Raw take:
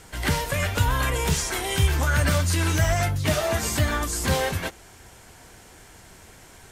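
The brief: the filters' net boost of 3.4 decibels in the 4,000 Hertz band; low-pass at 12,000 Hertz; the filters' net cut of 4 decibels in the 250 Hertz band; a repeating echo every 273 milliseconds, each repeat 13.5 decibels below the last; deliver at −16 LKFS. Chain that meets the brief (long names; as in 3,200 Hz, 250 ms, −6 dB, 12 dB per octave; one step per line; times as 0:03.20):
low-pass filter 12,000 Hz
parametric band 250 Hz −6.5 dB
parametric band 4,000 Hz +4.5 dB
repeating echo 273 ms, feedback 21%, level −13.5 dB
level +7.5 dB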